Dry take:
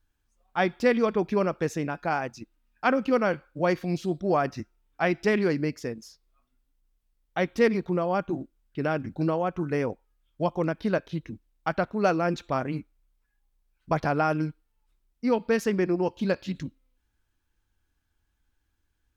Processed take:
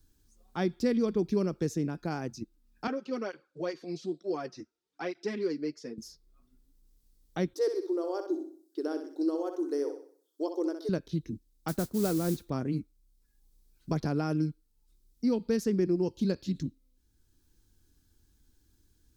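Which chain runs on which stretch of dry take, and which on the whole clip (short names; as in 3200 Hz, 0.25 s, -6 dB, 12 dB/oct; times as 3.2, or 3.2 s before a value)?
2.87–5.98 BPF 410–5600 Hz + doubler 13 ms -13 dB + tape flanging out of phase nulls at 1.1 Hz, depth 6.1 ms
7.53–10.89 brick-wall FIR high-pass 290 Hz + bell 2400 Hz -14.5 dB 0.75 oct + flutter echo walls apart 10.8 m, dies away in 0.45 s
11.68–12.5 high shelf 4200 Hz -10 dB + modulation noise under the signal 12 dB
whole clip: band shelf 1300 Hz -13 dB 2.8 oct; three-band squash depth 40%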